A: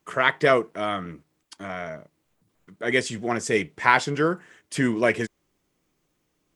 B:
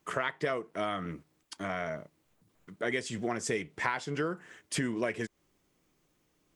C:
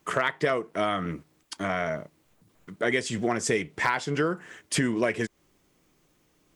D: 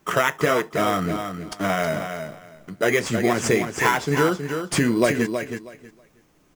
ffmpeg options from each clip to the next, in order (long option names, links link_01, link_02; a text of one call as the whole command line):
ffmpeg -i in.wav -af "acompressor=threshold=-29dB:ratio=6" out.wav
ffmpeg -i in.wav -af "asoftclip=type=hard:threshold=-19dB,volume=6.5dB" out.wav
ffmpeg -i in.wav -filter_complex "[0:a]flanger=delay=4.9:depth=6:regen=-62:speed=0.54:shape=triangular,asplit=2[link_01][link_02];[link_02]acrusher=samples=10:mix=1:aa=0.000001,volume=-4dB[link_03];[link_01][link_03]amix=inputs=2:normalize=0,aecho=1:1:320|640|960:0.422|0.0801|0.0152,volume=6dB" out.wav